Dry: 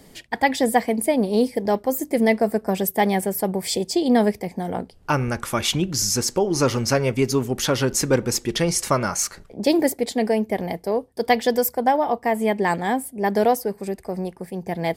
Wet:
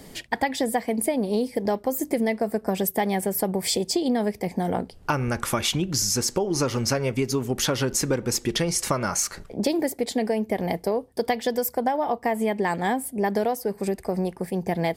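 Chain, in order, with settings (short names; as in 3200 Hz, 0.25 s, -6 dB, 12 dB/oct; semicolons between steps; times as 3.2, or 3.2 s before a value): compressor, threshold -25 dBFS, peak gain reduction 13 dB; gain +4 dB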